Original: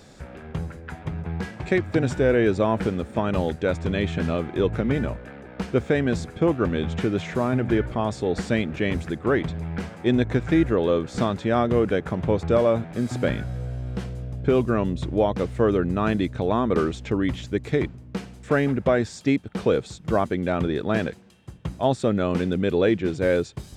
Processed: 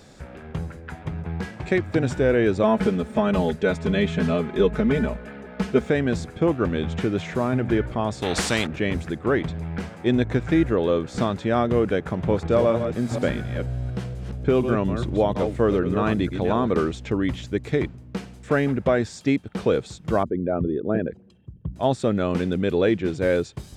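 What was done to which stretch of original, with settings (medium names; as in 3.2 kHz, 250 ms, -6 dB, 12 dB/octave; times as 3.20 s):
2.63–5.90 s: comb 4.7 ms, depth 85%
8.22–8.67 s: spectrum-flattening compressor 2:1
11.99–16.77 s: chunks repeated in reverse 239 ms, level -7.5 dB
20.23–21.76 s: resonances exaggerated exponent 2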